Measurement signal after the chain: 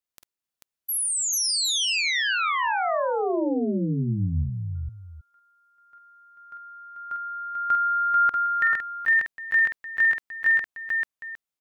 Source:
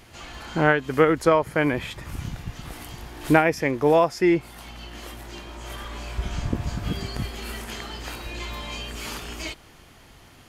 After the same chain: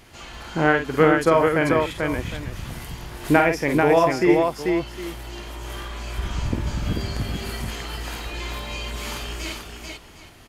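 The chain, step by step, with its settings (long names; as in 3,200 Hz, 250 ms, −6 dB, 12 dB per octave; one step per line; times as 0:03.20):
multi-tap delay 46/49/440/759 ms −14.5/−6.5/−3.5/−15 dB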